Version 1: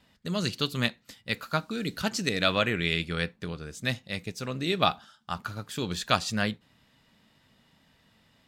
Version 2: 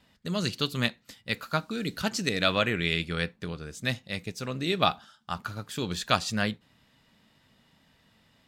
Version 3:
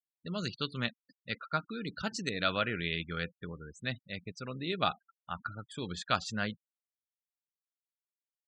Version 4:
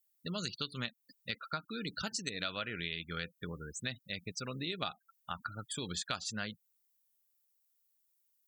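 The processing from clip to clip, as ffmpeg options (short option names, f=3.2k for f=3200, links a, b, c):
-af anull
-af "afftfilt=real='re*gte(hypot(re,im),0.0158)':imag='im*gte(hypot(re,im),0.0158)':win_size=1024:overlap=0.75,equalizer=f=1.4k:w=5.9:g=6,volume=-7dB"
-af "aemphasis=mode=production:type=75fm,acompressor=threshold=-38dB:ratio=4,volume=2dB"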